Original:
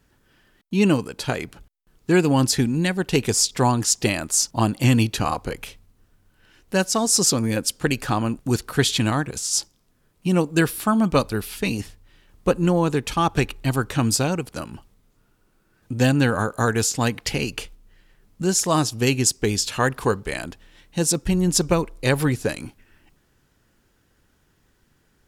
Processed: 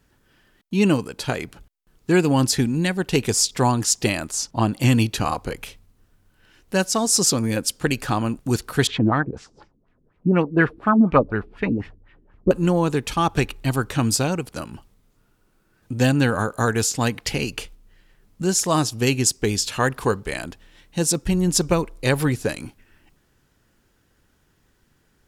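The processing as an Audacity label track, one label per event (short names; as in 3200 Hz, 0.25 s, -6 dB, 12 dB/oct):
4.310000	4.720000	high shelf 6200 Hz -11 dB
8.870000	12.510000	LFO low-pass sine 4.1 Hz 280–2400 Hz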